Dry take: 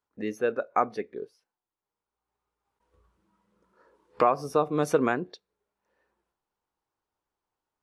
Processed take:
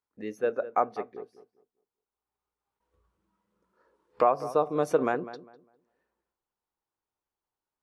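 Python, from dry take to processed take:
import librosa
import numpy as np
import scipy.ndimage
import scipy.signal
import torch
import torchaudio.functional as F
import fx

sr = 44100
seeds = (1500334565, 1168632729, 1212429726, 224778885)

y = fx.dynamic_eq(x, sr, hz=650.0, q=0.87, threshold_db=-35.0, ratio=4.0, max_db=7)
y = fx.echo_filtered(y, sr, ms=201, feedback_pct=25, hz=1900.0, wet_db=-14.0)
y = F.gain(torch.from_numpy(y), -6.0).numpy()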